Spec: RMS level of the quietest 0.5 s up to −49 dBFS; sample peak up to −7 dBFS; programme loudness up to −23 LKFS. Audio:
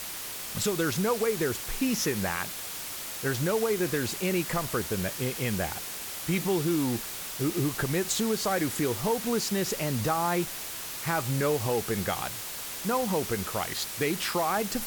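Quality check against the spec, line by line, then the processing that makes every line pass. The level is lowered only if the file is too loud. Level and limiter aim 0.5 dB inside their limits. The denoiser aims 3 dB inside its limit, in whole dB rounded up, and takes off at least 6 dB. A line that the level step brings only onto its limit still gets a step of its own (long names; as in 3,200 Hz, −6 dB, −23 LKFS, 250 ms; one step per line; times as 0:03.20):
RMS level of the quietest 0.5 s −37 dBFS: out of spec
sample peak −14.5 dBFS: in spec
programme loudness −29.0 LKFS: in spec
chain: broadband denoise 15 dB, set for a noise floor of −37 dBFS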